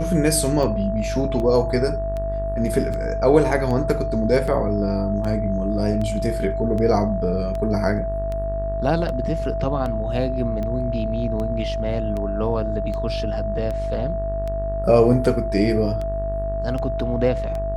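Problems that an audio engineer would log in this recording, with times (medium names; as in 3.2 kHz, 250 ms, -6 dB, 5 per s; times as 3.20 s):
buzz 50 Hz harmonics 38 -27 dBFS
tick 78 rpm -18 dBFS
whine 660 Hz -25 dBFS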